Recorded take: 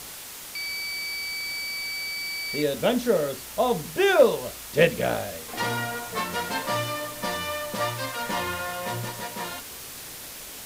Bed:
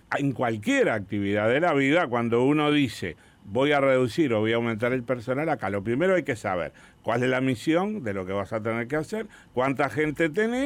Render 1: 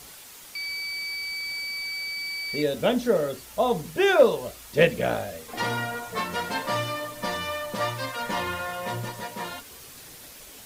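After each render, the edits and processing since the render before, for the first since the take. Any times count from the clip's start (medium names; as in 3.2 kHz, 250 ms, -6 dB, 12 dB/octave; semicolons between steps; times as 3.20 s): noise reduction 7 dB, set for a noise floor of -40 dBFS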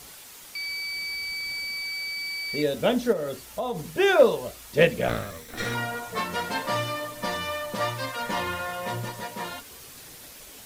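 0.94–1.79 s: bass shelf 210 Hz +6 dB; 3.12–3.87 s: compression 4:1, threshold -26 dBFS; 5.08–5.75 s: comb filter that takes the minimum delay 0.53 ms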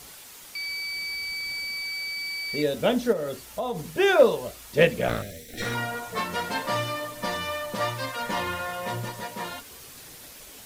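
5.22–5.62 s: Butterworth band-stop 1.1 kHz, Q 0.87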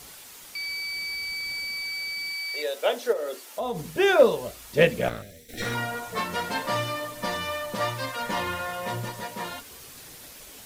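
2.32–3.59 s: high-pass 650 Hz -> 270 Hz 24 dB/octave; 5.09–5.49 s: gain -7 dB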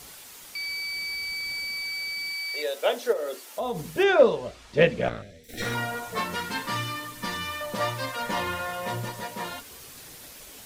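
4.03–5.44 s: distance through air 98 m; 6.35–7.61 s: peaking EQ 630 Hz -15 dB 0.54 oct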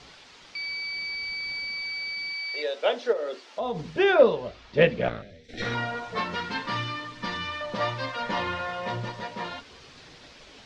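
low-pass 5 kHz 24 dB/octave; hum notches 50/100 Hz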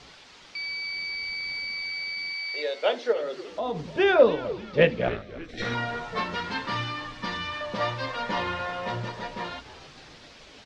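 frequency-shifting echo 294 ms, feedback 48%, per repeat -89 Hz, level -16 dB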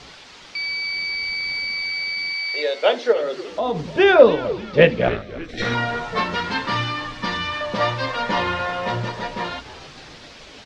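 trim +7 dB; peak limiter -1 dBFS, peak gain reduction 1 dB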